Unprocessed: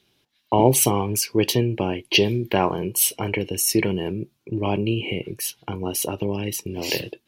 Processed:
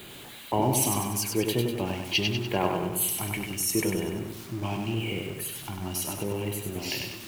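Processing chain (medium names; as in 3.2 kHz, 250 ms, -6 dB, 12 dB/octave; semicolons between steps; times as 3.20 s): jump at every zero crossing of -30 dBFS; LFO notch square 0.81 Hz 470–5500 Hz; bit-crushed delay 97 ms, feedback 55%, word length 7-bit, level -4 dB; trim -8 dB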